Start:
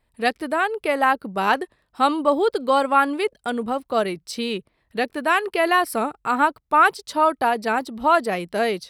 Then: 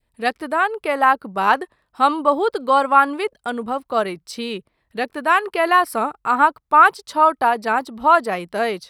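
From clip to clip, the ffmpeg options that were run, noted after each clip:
-af "adynamicequalizer=threshold=0.0316:dfrequency=1100:dqfactor=1.1:tfrequency=1100:tqfactor=1.1:attack=5:release=100:ratio=0.375:range=3.5:mode=boostabove:tftype=bell,volume=-1.5dB"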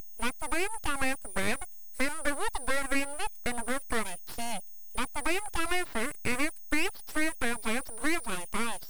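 -filter_complex "[0:a]aeval=exprs='val(0)+0.0251*sin(2*PI*9400*n/s)':c=same,acrossover=split=290|1900|4900[a][b][c][d];[a]acompressor=threshold=-44dB:ratio=4[e];[b]acompressor=threshold=-27dB:ratio=4[f];[c]acompressor=threshold=-42dB:ratio=4[g];[d]acompressor=threshold=-43dB:ratio=4[h];[e][f][g][h]amix=inputs=4:normalize=0,aeval=exprs='abs(val(0))':c=same"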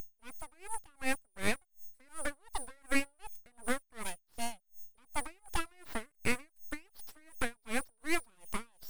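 -af "aeval=exprs='val(0)*pow(10,-36*(0.5-0.5*cos(2*PI*2.7*n/s))/20)':c=same"

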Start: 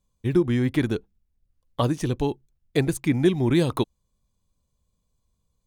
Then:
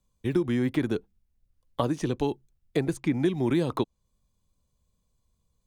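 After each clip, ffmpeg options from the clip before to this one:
-filter_complex "[0:a]acrossover=split=170|1600|8000[a][b][c][d];[a]acompressor=threshold=-38dB:ratio=4[e];[b]acompressor=threshold=-22dB:ratio=4[f];[c]acompressor=threshold=-41dB:ratio=4[g];[d]acompressor=threshold=-59dB:ratio=4[h];[e][f][g][h]amix=inputs=4:normalize=0"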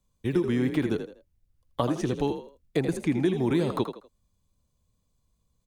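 -filter_complex "[0:a]asplit=4[a][b][c][d];[b]adelay=81,afreqshift=44,volume=-9dB[e];[c]adelay=162,afreqshift=88,volume=-19.5dB[f];[d]adelay=243,afreqshift=132,volume=-29.9dB[g];[a][e][f][g]amix=inputs=4:normalize=0"

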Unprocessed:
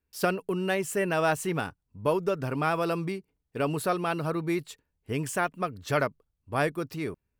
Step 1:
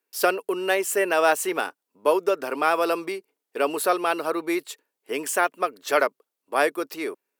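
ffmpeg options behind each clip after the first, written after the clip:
-af "highpass=f=340:w=0.5412,highpass=f=340:w=1.3066,equalizer=f=15k:w=0.54:g=5,volume=6dB"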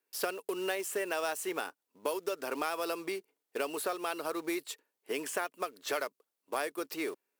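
-filter_complex "[0:a]acrossover=split=3600[a][b];[a]acompressor=threshold=-29dB:ratio=5[c];[b]alimiter=level_in=2.5dB:limit=-24dB:level=0:latency=1:release=261,volume=-2.5dB[d];[c][d]amix=inputs=2:normalize=0,acrusher=bits=4:mode=log:mix=0:aa=0.000001,volume=-3dB"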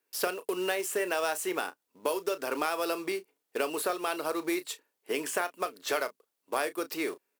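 -filter_complex "[0:a]asplit=2[a][b];[b]adelay=33,volume=-13dB[c];[a][c]amix=inputs=2:normalize=0,volume=3.5dB"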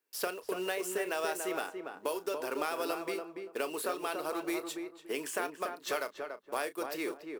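-filter_complex "[0:a]asplit=2[a][b];[b]adelay=286,lowpass=f=1.3k:p=1,volume=-4.5dB,asplit=2[c][d];[d]adelay=286,lowpass=f=1.3k:p=1,volume=0.25,asplit=2[e][f];[f]adelay=286,lowpass=f=1.3k:p=1,volume=0.25[g];[a][c][e][g]amix=inputs=4:normalize=0,volume=-4.5dB"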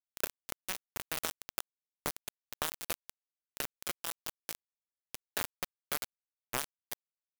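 -af "aexciter=amount=2.5:drive=6.6:freq=11k,acrusher=bits=3:mix=0:aa=0.000001"

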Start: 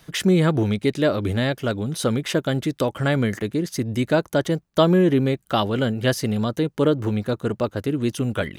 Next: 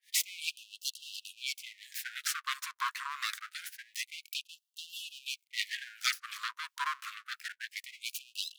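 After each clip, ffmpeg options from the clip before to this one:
-filter_complex "[0:a]acrossover=split=550[a][b];[a]aeval=exprs='val(0)*(1-1/2+1/2*cos(2*PI*2.9*n/s))':c=same[c];[b]aeval=exprs='val(0)*(1-1/2-1/2*cos(2*PI*2.9*n/s))':c=same[d];[c][d]amix=inputs=2:normalize=0,aeval=exprs='abs(val(0))':c=same,afftfilt=real='re*gte(b*sr/1024,950*pow(2700/950,0.5+0.5*sin(2*PI*0.26*pts/sr)))':imag='im*gte(b*sr/1024,950*pow(2700/950,0.5+0.5*sin(2*PI*0.26*pts/sr)))':win_size=1024:overlap=0.75,volume=3.5dB"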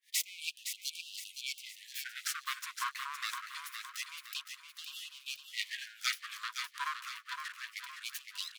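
-af "aecho=1:1:514|1028|1542|2056|2570:0.447|0.188|0.0788|0.0331|0.0139,volume=-3dB"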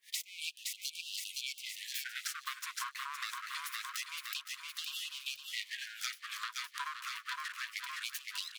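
-af "acompressor=threshold=-45dB:ratio=12,volume=8.5dB"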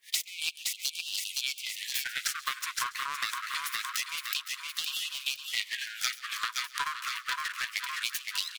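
-filter_complex "[0:a]asplit=2[a][b];[b]acrusher=bits=4:mix=0:aa=0.5,volume=-9.5dB[c];[a][c]amix=inputs=2:normalize=0,aecho=1:1:135:0.0841,volume=6.5dB"

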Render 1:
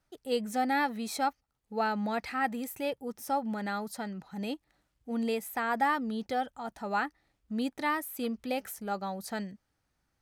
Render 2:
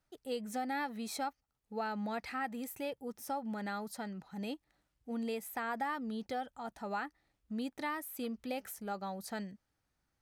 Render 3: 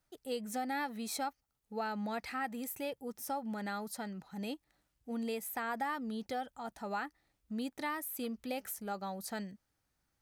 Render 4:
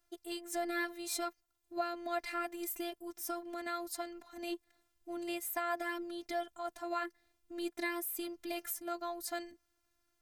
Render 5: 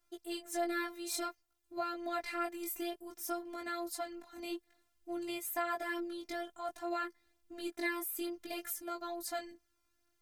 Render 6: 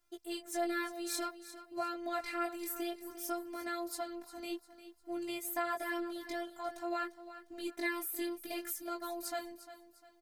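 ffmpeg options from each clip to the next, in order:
-af "acompressor=threshold=-31dB:ratio=2.5,volume=-4dB"
-af "highshelf=f=6.4k:g=5.5"
-af "afftfilt=real='hypot(re,im)*cos(PI*b)':imag='0':win_size=512:overlap=0.75,volume=5.5dB"
-af "flanger=delay=16.5:depth=4.7:speed=0.56,volume=3dB"
-af "aecho=1:1:351|702|1053:0.2|0.0718|0.0259"

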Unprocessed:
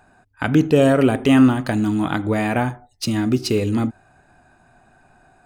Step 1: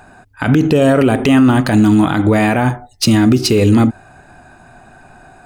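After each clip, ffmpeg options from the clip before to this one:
-af "alimiter=level_in=14.5dB:limit=-1dB:release=50:level=0:latency=1,volume=-2.5dB"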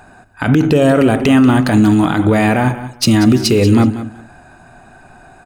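-af "aecho=1:1:187|374:0.224|0.0425"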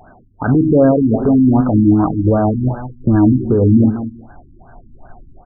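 -af "asubboost=boost=3.5:cutoff=94,flanger=delay=1.5:depth=3.1:regen=78:speed=0.39:shape=sinusoidal,afftfilt=real='re*lt(b*sr/1024,320*pow(1700/320,0.5+0.5*sin(2*PI*2.6*pts/sr)))':imag='im*lt(b*sr/1024,320*pow(1700/320,0.5+0.5*sin(2*PI*2.6*pts/sr)))':win_size=1024:overlap=0.75,volume=4.5dB"

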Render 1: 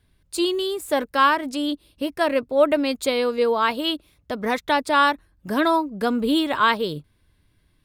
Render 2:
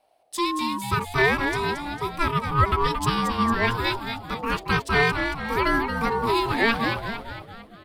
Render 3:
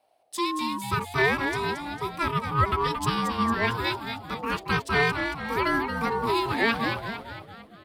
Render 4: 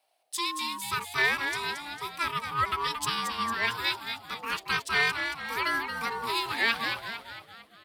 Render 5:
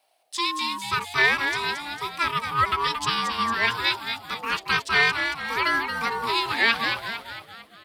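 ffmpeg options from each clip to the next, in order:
-filter_complex "[0:a]aeval=exprs='val(0)*sin(2*PI*690*n/s)':c=same,asplit=2[a][b];[b]asplit=7[c][d][e][f][g][h][i];[c]adelay=226,afreqshift=-110,volume=-6.5dB[j];[d]adelay=452,afreqshift=-220,volume=-12dB[k];[e]adelay=678,afreqshift=-330,volume=-17.5dB[l];[f]adelay=904,afreqshift=-440,volume=-23dB[m];[g]adelay=1130,afreqshift=-550,volume=-28.6dB[n];[h]adelay=1356,afreqshift=-660,volume=-34.1dB[o];[i]adelay=1582,afreqshift=-770,volume=-39.6dB[p];[j][k][l][m][n][o][p]amix=inputs=7:normalize=0[q];[a][q]amix=inputs=2:normalize=0"
-af "highpass=69,volume=-2.5dB"
-af "tiltshelf=f=930:g=-9,volume=-5.5dB"
-filter_complex "[0:a]acrossover=split=7000[a][b];[b]acompressor=threshold=-53dB:ratio=4:attack=1:release=60[c];[a][c]amix=inputs=2:normalize=0,volume=5.5dB"

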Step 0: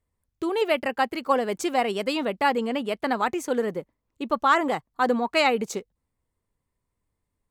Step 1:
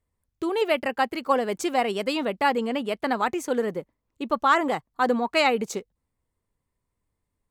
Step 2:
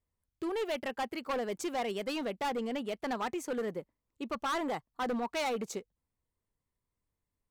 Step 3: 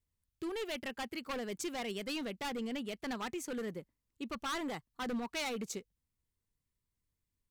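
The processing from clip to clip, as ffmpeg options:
-af anull
-af "asoftclip=type=hard:threshold=-22dB,volume=-7.5dB"
-af "equalizer=f=710:t=o:w=2.1:g=-9.5,volume=1dB"

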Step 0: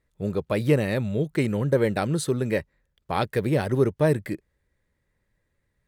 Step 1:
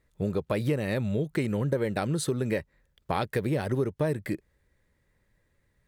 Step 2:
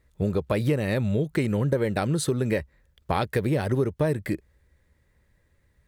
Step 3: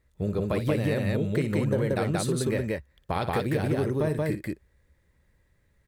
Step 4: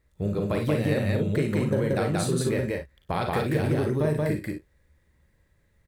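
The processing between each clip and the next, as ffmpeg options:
-af "acompressor=threshold=-29dB:ratio=4,volume=3.5dB"
-af "equalizer=f=67:t=o:w=0.62:g=9.5,volume=3dB"
-af "aecho=1:1:58.31|180.8:0.282|0.891,volume=-4dB"
-af "aecho=1:1:40|53|70:0.447|0.299|0.168"

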